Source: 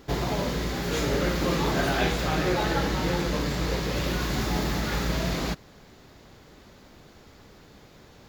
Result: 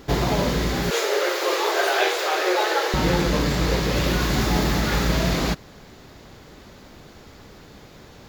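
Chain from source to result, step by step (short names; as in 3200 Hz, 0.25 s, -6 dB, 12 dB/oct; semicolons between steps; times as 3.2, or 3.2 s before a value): 0.9–2.94 steep high-pass 360 Hz 72 dB/oct; gain +6 dB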